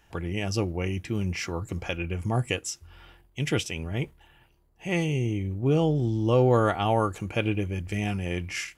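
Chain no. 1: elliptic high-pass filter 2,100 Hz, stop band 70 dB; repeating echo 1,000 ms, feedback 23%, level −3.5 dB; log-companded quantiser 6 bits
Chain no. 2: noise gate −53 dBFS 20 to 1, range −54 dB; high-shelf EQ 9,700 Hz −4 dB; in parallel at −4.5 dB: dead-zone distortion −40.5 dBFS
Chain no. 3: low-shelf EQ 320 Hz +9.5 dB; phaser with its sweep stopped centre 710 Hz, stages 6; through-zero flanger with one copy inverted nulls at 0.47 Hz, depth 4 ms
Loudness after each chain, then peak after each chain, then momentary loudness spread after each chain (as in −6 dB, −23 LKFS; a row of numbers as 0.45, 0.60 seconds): −37.0, −24.0, −29.0 LKFS; −15.0, −6.5, −12.0 dBFS; 11, 11, 15 LU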